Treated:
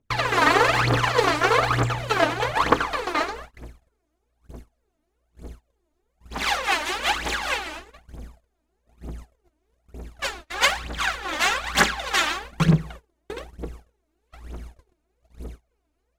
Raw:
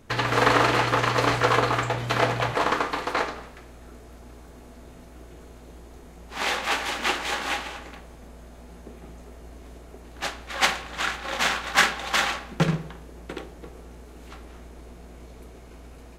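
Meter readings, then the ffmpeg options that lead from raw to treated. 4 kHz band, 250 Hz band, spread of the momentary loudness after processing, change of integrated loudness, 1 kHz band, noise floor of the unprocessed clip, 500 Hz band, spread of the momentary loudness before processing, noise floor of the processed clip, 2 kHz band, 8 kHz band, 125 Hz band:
+1.5 dB, +2.5 dB, 21 LU, +2.0 dB, +1.5 dB, −46 dBFS, +1.5 dB, 18 LU, −74 dBFS, +2.0 dB, +2.0 dB, +3.0 dB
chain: -af "aphaser=in_gain=1:out_gain=1:delay=3.4:decay=0.77:speed=1.1:type=triangular,agate=range=-29dB:threshold=-35dB:ratio=16:detection=peak,volume=-2dB"

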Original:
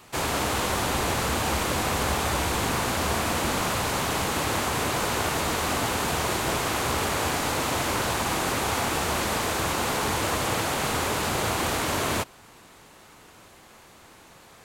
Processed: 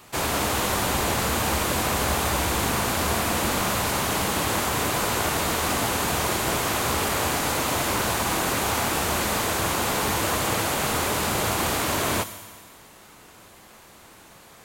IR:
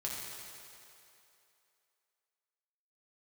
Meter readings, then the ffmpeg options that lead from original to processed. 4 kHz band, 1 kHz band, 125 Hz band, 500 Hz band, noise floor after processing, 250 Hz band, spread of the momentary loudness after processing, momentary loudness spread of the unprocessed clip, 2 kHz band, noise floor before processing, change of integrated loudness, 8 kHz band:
+1.5 dB, +1.5 dB, +1.0 dB, +1.5 dB, −49 dBFS, +1.5 dB, 0 LU, 0 LU, +1.5 dB, −51 dBFS, +2.0 dB, +3.0 dB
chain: -filter_complex "[0:a]asplit=2[link_01][link_02];[link_02]aemphasis=mode=production:type=50fm[link_03];[1:a]atrim=start_sample=2205,asetrate=70560,aresample=44100[link_04];[link_03][link_04]afir=irnorm=-1:irlink=0,volume=-9dB[link_05];[link_01][link_05]amix=inputs=2:normalize=0"

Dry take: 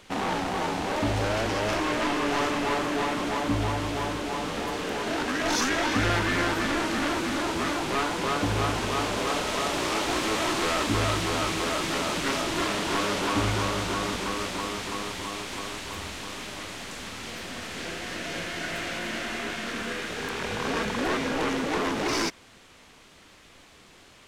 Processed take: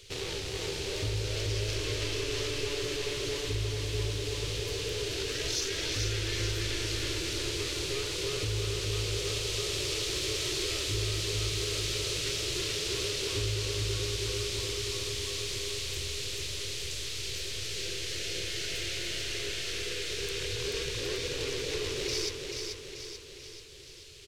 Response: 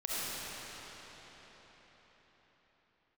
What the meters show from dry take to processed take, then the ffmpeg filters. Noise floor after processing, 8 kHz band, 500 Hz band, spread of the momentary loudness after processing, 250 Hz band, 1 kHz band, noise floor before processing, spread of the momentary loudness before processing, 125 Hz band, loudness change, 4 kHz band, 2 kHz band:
−45 dBFS, +1.0 dB, −5.0 dB, 4 LU, −13.0 dB, −19.5 dB, −53 dBFS, 9 LU, −0.5 dB, −4.5 dB, +0.5 dB, −8.0 dB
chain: -filter_complex "[0:a]firequalizer=gain_entry='entry(120,0);entry(220,-29);entry(400,-1);entry(720,-25);entry(2500,-5);entry(4300,2);entry(9000,-2)':delay=0.05:min_phase=1,acompressor=threshold=-36dB:ratio=2.5,asplit=2[link_01][link_02];[link_02]aecho=0:1:436|872|1308|1744|2180|2616|3052:0.562|0.298|0.158|0.0837|0.0444|0.0235|0.0125[link_03];[link_01][link_03]amix=inputs=2:normalize=0,volume=3.5dB"

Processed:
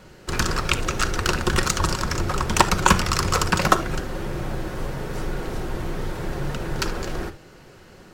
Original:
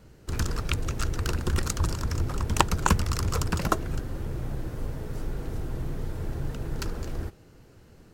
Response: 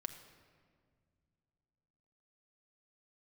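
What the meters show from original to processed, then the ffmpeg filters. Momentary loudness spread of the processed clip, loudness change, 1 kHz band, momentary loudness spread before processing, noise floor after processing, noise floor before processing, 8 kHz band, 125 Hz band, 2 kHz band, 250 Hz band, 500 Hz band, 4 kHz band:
11 LU, +6.0 dB, +8.5 dB, 10 LU, −47 dBFS, −54 dBFS, +8.0 dB, +1.5 dB, +11.0 dB, +6.0 dB, +8.0 dB, +9.5 dB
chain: -filter_complex "[0:a]asplit=2[link_01][link_02];[link_02]highpass=frequency=720:poles=1,volume=10dB,asoftclip=type=tanh:threshold=-3dB[link_03];[link_01][link_03]amix=inputs=2:normalize=0,lowpass=frequency=4900:poles=1,volume=-6dB,acontrast=81[link_04];[1:a]atrim=start_sample=2205,afade=type=out:start_time=0.13:duration=0.01,atrim=end_sample=6174[link_05];[link_04][link_05]afir=irnorm=-1:irlink=0,volume=3dB"

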